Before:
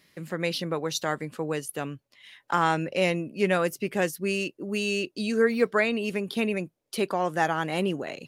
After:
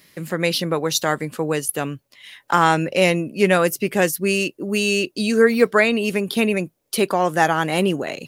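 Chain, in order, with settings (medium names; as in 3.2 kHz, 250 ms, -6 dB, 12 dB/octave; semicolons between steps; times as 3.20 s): treble shelf 9.3 kHz +9.5 dB; trim +7.5 dB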